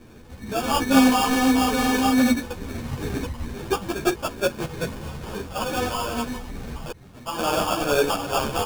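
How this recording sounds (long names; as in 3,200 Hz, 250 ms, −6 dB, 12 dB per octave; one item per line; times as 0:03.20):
a buzz of ramps at a fixed pitch in blocks of 8 samples
phaser sweep stages 8, 2.3 Hz, lowest notch 400–2,100 Hz
aliases and images of a low sample rate 2,000 Hz, jitter 0%
a shimmering, thickened sound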